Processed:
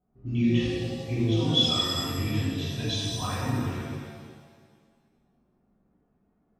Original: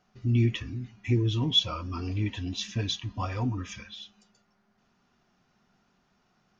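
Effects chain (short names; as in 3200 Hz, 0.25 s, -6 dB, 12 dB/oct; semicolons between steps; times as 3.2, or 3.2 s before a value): low-pass opened by the level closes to 500 Hz, open at -24 dBFS; shimmer reverb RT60 1.6 s, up +7 st, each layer -8 dB, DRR -9 dB; gain -7 dB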